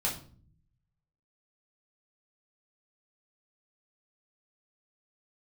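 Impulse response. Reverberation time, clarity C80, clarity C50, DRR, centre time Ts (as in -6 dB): 0.45 s, 13.5 dB, 8.5 dB, -4.5 dB, 24 ms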